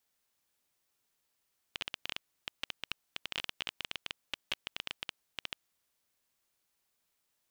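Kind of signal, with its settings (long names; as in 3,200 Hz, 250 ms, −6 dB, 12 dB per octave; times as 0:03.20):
Geiger counter clicks 12 per second −17.5 dBFS 4.21 s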